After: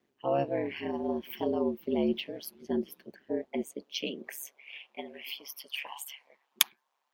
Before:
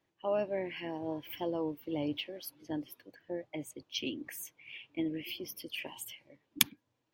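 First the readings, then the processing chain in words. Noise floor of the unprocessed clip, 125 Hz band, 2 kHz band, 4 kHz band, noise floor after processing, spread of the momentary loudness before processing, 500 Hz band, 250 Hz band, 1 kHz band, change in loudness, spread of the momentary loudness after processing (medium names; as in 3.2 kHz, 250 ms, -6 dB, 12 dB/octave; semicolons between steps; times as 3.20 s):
-81 dBFS, +1.5 dB, +2.0 dB, +2.0 dB, -79 dBFS, 14 LU, +5.0 dB, +4.0 dB, +5.5 dB, +3.5 dB, 15 LU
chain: high-pass sweep 240 Hz -> 910 Hz, 3.11–5.40 s; ring modulator 70 Hz; trim +4.5 dB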